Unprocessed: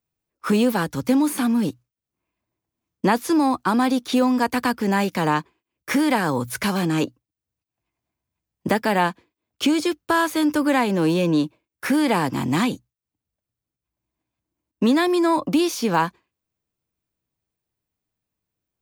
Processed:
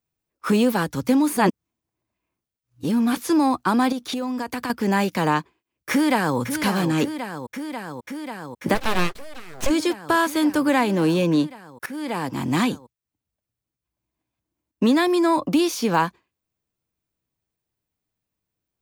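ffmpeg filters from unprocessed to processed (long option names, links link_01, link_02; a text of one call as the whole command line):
ffmpeg -i in.wav -filter_complex "[0:a]asettb=1/sr,asplit=3[link_01][link_02][link_03];[link_01]atrim=end=3.924[link_04];[link_02]atrim=start=3.92:end=4.7,asetpts=PTS-STARTPTS,afade=type=in:duration=0.004:curve=qsin,afade=type=out:start_time=0.776:duration=0.004:curve=qsin,acompressor=threshold=-24dB:ratio=6:attack=3.2:release=140:knee=1:detection=peak[link_05];[link_03]atrim=start=4.696[link_06];[link_04][link_05]acrossfade=duration=0.004:curve1=hsin:curve2=qsin[link_07];[link_07][link_06]acrossfade=duration=0.004:curve1=qsin:curve2=hsin,asplit=2[link_08][link_09];[link_09]afade=type=in:start_time=5.91:duration=0.01,afade=type=out:start_time=6.38:duration=0.01,aecho=0:1:540|1080|1620|2160|2700|3240|3780|4320|4860|5400|5940|6480:0.354813|0.301591|0.256353|0.2179|0.185215|0.157433|0.133818|0.113745|0.0966833|0.0821808|0.0698537|0.0593756[link_10];[link_08][link_10]amix=inputs=2:normalize=0,asplit=3[link_11][link_12][link_13];[link_11]afade=type=out:start_time=8.74:duration=0.02[link_14];[link_12]aeval=exprs='abs(val(0))':channel_layout=same,afade=type=in:start_time=8.74:duration=0.02,afade=type=out:start_time=9.69:duration=0.02[link_15];[link_13]afade=type=in:start_time=9.69:duration=0.02[link_16];[link_14][link_15][link_16]amix=inputs=3:normalize=0,asplit=4[link_17][link_18][link_19][link_20];[link_17]atrim=end=1.372[link_21];[link_18]atrim=start=1.368:end=3.172,asetpts=PTS-STARTPTS,areverse[link_22];[link_19]atrim=start=3.168:end=11.86,asetpts=PTS-STARTPTS,afade=type=out:start_time=8.688:duration=0.004:curve=hsin:silence=0.112202[link_23];[link_20]atrim=start=11.86,asetpts=PTS-STARTPTS,afade=type=in:duration=0.74:silence=0.112202[link_24];[link_21][link_22]acrossfade=duration=0.004:curve1=hsin:curve2=hsin[link_25];[link_23][link_24]concat=n=2:v=0:a=1[link_26];[link_25][link_26]acrossfade=duration=0.004:curve1=hsin:curve2=hsin" out.wav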